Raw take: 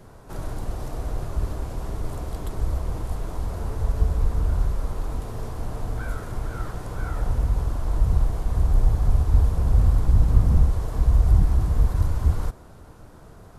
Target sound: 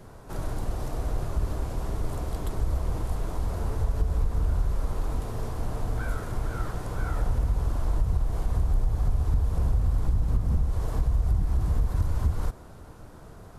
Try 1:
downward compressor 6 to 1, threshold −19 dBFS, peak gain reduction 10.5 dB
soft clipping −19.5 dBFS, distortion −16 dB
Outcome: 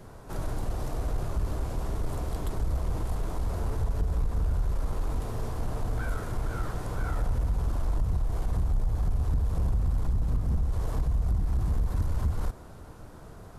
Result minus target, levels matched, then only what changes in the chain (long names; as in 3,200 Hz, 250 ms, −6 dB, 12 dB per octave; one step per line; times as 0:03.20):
soft clipping: distortion +17 dB
change: soft clipping −9 dBFS, distortion −32 dB